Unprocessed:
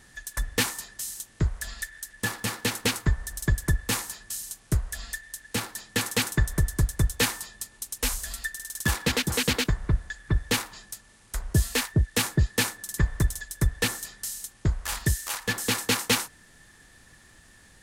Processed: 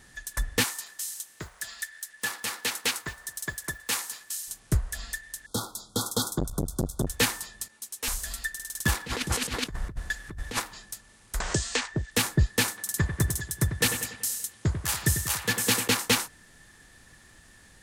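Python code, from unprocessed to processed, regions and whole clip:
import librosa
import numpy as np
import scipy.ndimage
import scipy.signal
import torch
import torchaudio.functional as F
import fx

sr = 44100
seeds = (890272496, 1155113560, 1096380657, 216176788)

y = fx.chain(x, sr, fx.block_float(bits=7),
    fx.highpass(hz=880.0, slope=6),
    fx.echo_single(ms=220, db=-21.5), at=(0.64, 4.48))
y = fx.chain(y, sr, fx.brickwall_bandstop(low_hz=1500.0, high_hz=3200.0),
    fx.transformer_sat(knee_hz=360.0), at=(5.46, 7.07))
y = fx.chain(y, sr, fx.highpass(hz=310.0, slope=6),
    fx.ensemble(), at=(7.68, 8.08))
y = fx.chain(y, sr, fx.cvsd(bps=64000),
    fx.over_compress(threshold_db=-29.0, ratio=-0.5), at=(9.06, 10.6))
y = fx.chain(y, sr, fx.steep_lowpass(hz=8100.0, slope=48),
    fx.low_shelf(hz=250.0, db=-11.5),
    fx.band_squash(depth_pct=100), at=(11.4, 12.11))
y = fx.chain(y, sr, fx.highpass(hz=68.0, slope=24),
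    fx.high_shelf(hz=5300.0, db=5.5),
    fx.echo_bbd(ms=95, stages=2048, feedback_pct=53, wet_db=-8.5), at=(12.68, 15.88))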